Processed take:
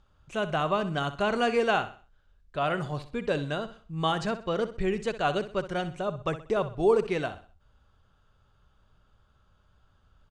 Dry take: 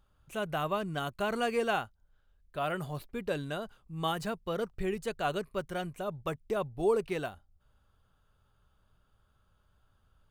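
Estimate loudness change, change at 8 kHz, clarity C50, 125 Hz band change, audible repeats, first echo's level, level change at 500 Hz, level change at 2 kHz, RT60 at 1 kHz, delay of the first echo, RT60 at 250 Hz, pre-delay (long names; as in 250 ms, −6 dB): +5.0 dB, +0.5 dB, no reverb audible, +5.5 dB, 3, −13.0 dB, +5.5 dB, +5.5 dB, no reverb audible, 63 ms, no reverb audible, no reverb audible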